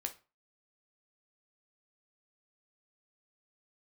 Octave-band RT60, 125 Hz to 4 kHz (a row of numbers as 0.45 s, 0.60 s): 0.35 s, 0.35 s, 0.30 s, 0.35 s, 0.30 s, 0.25 s